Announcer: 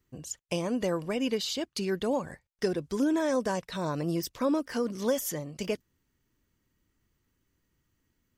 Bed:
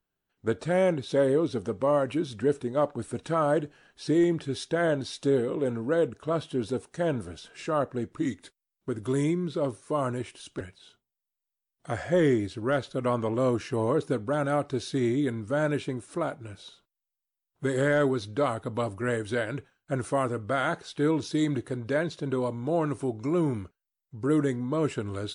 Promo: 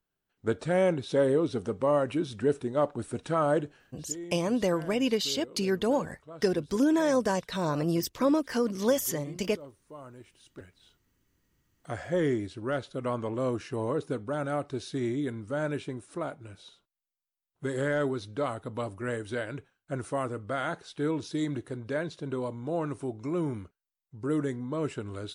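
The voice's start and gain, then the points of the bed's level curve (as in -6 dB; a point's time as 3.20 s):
3.80 s, +2.5 dB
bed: 3.76 s -1 dB
4.06 s -18 dB
10.08 s -18 dB
11.07 s -4.5 dB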